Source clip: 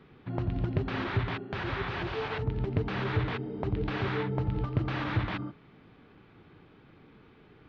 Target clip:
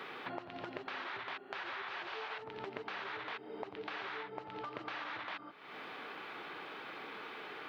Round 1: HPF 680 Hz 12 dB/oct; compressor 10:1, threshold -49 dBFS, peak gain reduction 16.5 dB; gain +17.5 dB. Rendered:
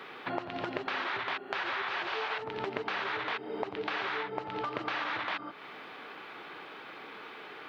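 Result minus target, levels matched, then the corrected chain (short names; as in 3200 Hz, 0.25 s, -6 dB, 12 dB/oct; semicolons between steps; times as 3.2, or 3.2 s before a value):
compressor: peak gain reduction -8.5 dB
HPF 680 Hz 12 dB/oct; compressor 10:1, threshold -58.5 dBFS, peak gain reduction 25 dB; gain +17.5 dB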